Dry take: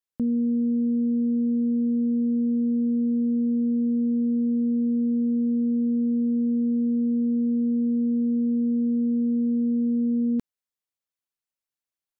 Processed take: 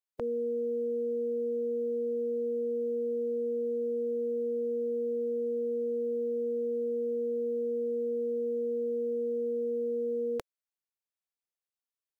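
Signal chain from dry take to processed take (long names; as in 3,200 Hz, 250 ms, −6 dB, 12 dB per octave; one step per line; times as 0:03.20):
ceiling on every frequency bin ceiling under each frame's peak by 27 dB
low shelf with overshoot 350 Hz −7 dB, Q 1.5
level −7 dB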